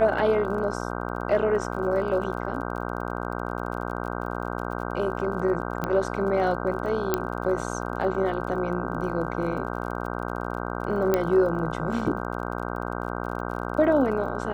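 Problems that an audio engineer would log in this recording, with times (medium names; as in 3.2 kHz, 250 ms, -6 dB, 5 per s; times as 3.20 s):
buzz 60 Hz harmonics 26 -31 dBFS
crackle 33 per s -36 dBFS
5.84 s: pop -14 dBFS
7.14 s: pop -8 dBFS
11.14 s: pop -9 dBFS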